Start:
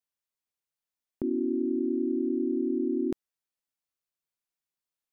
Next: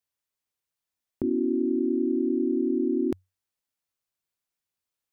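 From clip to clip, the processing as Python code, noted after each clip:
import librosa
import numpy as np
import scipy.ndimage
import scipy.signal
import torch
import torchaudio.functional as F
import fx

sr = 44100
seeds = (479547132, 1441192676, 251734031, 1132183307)

y = fx.peak_eq(x, sr, hz=93.0, db=9.5, octaves=0.23)
y = y * librosa.db_to_amplitude(3.0)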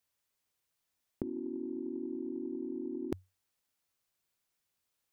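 y = fx.over_compress(x, sr, threshold_db=-31.0, ratio=-0.5)
y = y * librosa.db_to_amplitude(-4.5)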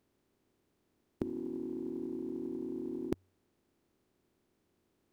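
y = fx.bin_compress(x, sr, power=0.4)
y = fx.upward_expand(y, sr, threshold_db=-44.0, expansion=2.5)
y = y * librosa.db_to_amplitude(2.0)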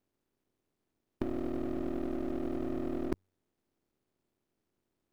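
y = np.where(x < 0.0, 10.0 ** (-12.0 / 20.0) * x, x)
y = fx.leveller(y, sr, passes=2)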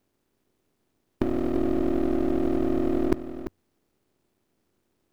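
y = x + 10.0 ** (-10.0 / 20.0) * np.pad(x, (int(343 * sr / 1000.0), 0))[:len(x)]
y = y * librosa.db_to_amplitude(9.0)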